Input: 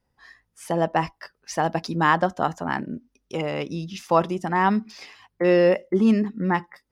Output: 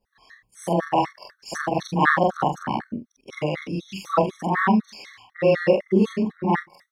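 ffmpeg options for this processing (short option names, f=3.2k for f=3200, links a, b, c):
-af "afftfilt=real='re':imag='-im':win_size=4096:overlap=0.75,afftfilt=real='re*gt(sin(2*PI*4*pts/sr)*(1-2*mod(floor(b*sr/1024/1100),2)),0)':imag='im*gt(sin(2*PI*4*pts/sr)*(1-2*mod(floor(b*sr/1024/1100),2)),0)':win_size=1024:overlap=0.75,volume=8dB"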